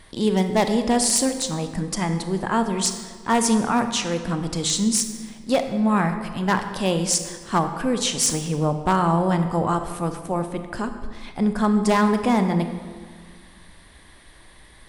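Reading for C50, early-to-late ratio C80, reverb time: 8.5 dB, 10.0 dB, 1.7 s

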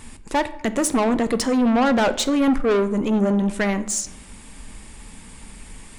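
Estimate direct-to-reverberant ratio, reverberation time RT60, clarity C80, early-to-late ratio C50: 11.5 dB, 0.90 s, 17.5 dB, 15.0 dB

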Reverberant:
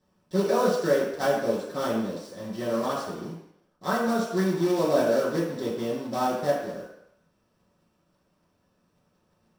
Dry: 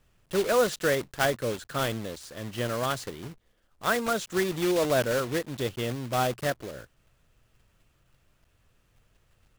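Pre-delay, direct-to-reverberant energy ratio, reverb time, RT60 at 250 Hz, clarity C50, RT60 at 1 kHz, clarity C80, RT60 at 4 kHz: 3 ms, -9.0 dB, 0.80 s, 0.65 s, 3.0 dB, 0.80 s, 6.0 dB, 0.75 s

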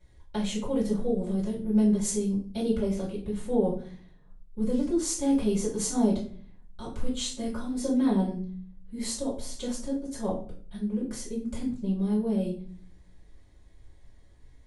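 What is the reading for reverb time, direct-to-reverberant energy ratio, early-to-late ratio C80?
0.45 s, -8.5 dB, 11.5 dB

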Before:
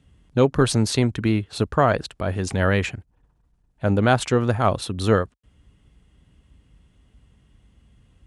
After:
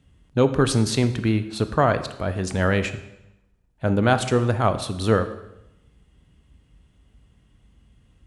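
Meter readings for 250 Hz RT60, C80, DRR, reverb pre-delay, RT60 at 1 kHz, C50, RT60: 0.95 s, 14.5 dB, 10.5 dB, 18 ms, 0.85 s, 12.5 dB, 0.90 s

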